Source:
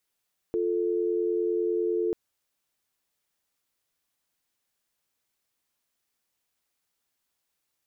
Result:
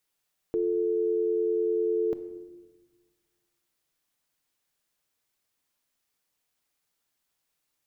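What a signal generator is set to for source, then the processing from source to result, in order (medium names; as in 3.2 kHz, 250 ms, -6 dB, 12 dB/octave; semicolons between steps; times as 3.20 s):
call progress tone dial tone, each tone -26.5 dBFS 1.59 s
simulated room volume 840 m³, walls mixed, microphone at 0.47 m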